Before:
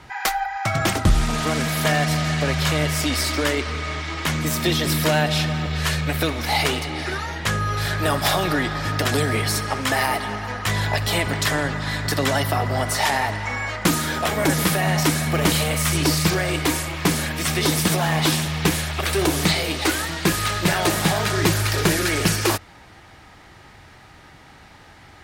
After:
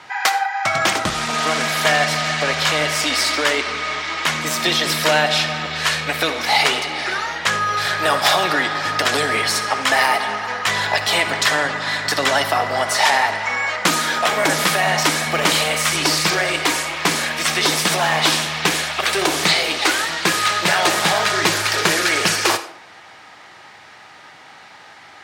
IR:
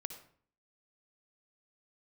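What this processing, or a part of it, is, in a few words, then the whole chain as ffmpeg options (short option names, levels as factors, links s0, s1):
filtered reverb send: -filter_complex "[0:a]asplit=2[s0][s1];[s1]highpass=510,lowpass=8700[s2];[1:a]atrim=start_sample=2205[s3];[s2][s3]afir=irnorm=-1:irlink=0,volume=1.78[s4];[s0][s4]amix=inputs=2:normalize=0,highpass=190,volume=0.891"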